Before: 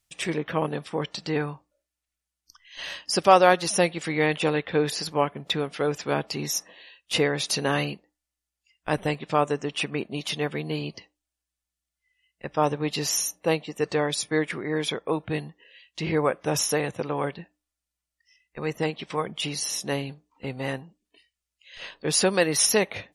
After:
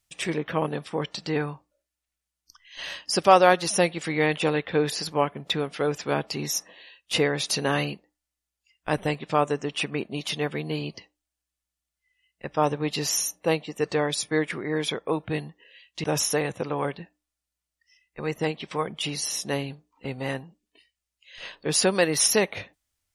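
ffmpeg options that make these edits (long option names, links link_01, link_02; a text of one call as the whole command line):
ffmpeg -i in.wav -filter_complex "[0:a]asplit=2[link_01][link_02];[link_01]atrim=end=16.042[link_03];[link_02]atrim=start=16.428[link_04];[link_03][link_04]acrossfade=duration=0.004:curve1=hsin:curve2=hsin" out.wav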